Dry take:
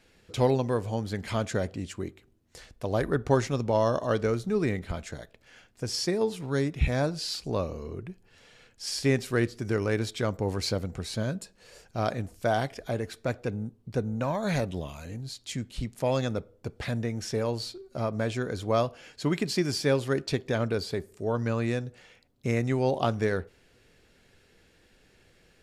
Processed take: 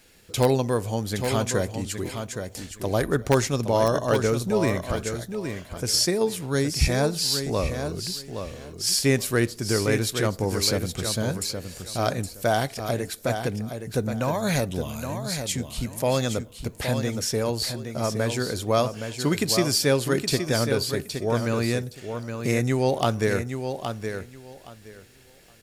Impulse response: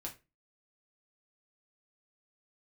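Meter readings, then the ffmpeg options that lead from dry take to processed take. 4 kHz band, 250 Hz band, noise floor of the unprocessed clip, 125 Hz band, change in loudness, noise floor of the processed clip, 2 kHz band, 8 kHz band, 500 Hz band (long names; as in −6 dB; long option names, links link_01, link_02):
+9.0 dB, +4.0 dB, −63 dBFS, +4.0 dB, +4.5 dB, −48 dBFS, +5.0 dB, +12.5 dB, +4.0 dB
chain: -filter_complex "[0:a]aemphasis=mode=production:type=50fm,asplit=2[link_01][link_02];[link_02]aeval=exprs='(mod(3.98*val(0)+1,2)-1)/3.98':channel_layout=same,volume=-6dB[link_03];[link_01][link_03]amix=inputs=2:normalize=0,aecho=1:1:818|1636|2454:0.422|0.0801|0.0152"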